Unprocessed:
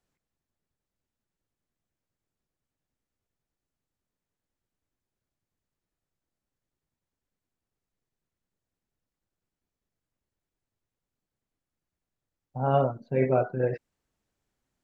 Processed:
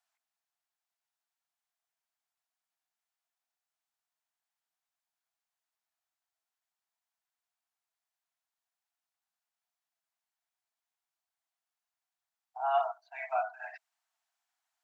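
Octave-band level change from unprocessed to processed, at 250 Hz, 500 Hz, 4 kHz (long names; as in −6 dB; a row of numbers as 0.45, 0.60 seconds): below −40 dB, −10.5 dB, can't be measured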